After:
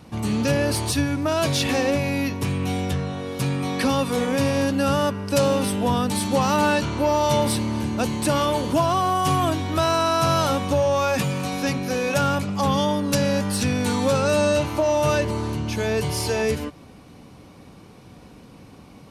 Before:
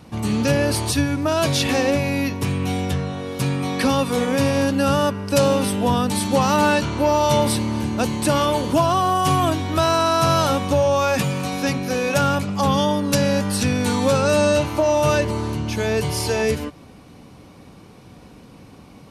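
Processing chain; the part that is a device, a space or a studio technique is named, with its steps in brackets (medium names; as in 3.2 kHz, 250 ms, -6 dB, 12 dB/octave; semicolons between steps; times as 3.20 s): parallel distortion (in parallel at -11 dB: hard clipper -22 dBFS, distortion -7 dB); on the sum: trim -3.5 dB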